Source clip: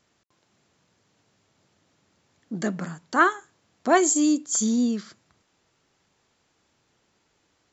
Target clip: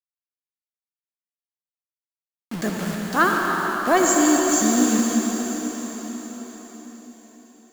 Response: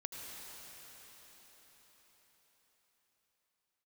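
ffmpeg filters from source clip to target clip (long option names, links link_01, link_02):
-filter_complex "[0:a]acontrast=38,acrusher=bits=4:mix=0:aa=0.000001[link_01];[1:a]atrim=start_sample=2205[link_02];[link_01][link_02]afir=irnorm=-1:irlink=0"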